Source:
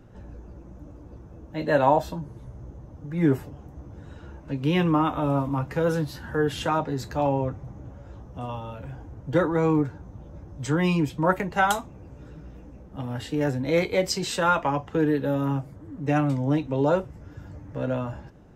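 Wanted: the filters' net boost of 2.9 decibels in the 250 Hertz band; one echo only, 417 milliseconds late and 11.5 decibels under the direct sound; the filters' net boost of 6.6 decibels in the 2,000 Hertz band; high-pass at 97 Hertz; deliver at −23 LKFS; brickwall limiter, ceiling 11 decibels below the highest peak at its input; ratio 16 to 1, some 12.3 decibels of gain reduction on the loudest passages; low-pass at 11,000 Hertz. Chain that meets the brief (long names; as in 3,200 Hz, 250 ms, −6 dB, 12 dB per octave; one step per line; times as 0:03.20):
high-pass filter 97 Hz
low-pass filter 11,000 Hz
parametric band 250 Hz +4 dB
parametric band 2,000 Hz +9 dB
downward compressor 16 to 1, threshold −25 dBFS
brickwall limiter −25.5 dBFS
single-tap delay 417 ms −11.5 dB
level +12.5 dB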